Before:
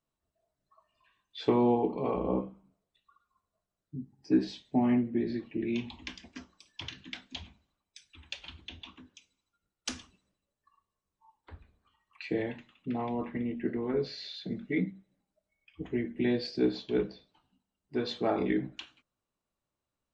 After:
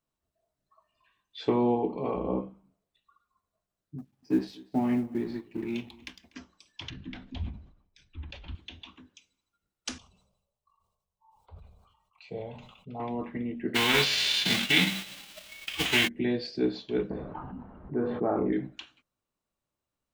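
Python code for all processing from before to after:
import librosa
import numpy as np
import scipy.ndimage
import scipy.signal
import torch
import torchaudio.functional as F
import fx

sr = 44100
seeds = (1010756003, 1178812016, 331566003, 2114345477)

y = fx.chain(x, sr, fx.law_mismatch(coded='A'),
    fx.echo_single(ms=243, db=-23.5), at=(3.98, 6.34))
y = fx.chain(y, sr, fx.lowpass(hz=6200.0, slope=12),
    fx.tilt_eq(slope=-4.0),
    fx.sustainer(db_per_s=95.0), at=(6.9, 8.55))
y = fx.chain(y, sr, fx.high_shelf(hz=3000.0, db=-7.0),
    fx.fixed_phaser(hz=730.0, stages=4),
    fx.sustainer(db_per_s=59.0), at=(9.98, 13.0))
y = fx.envelope_flatten(y, sr, power=0.3, at=(13.74, 16.07), fade=0.02)
y = fx.peak_eq(y, sr, hz=3000.0, db=14.5, octaves=1.4, at=(13.74, 16.07), fade=0.02)
y = fx.env_flatten(y, sr, amount_pct=50, at=(13.74, 16.07), fade=0.02)
y = fx.chain(y, sr, fx.lowpass(hz=1400.0, slope=24),
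    fx.doubler(ms=29.0, db=-13.0),
    fx.env_flatten(amount_pct=70), at=(17.1, 18.53))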